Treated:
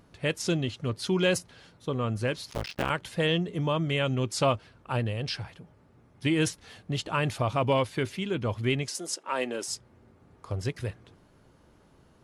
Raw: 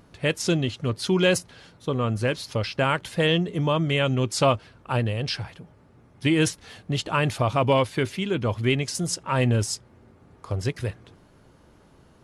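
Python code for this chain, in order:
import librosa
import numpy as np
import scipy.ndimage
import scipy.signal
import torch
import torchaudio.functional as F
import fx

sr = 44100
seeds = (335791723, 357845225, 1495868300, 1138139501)

y = fx.cycle_switch(x, sr, every=2, mode='muted', at=(2.5, 2.9))
y = fx.highpass(y, sr, hz=290.0, slope=24, at=(8.88, 9.68))
y = F.gain(torch.from_numpy(y), -4.5).numpy()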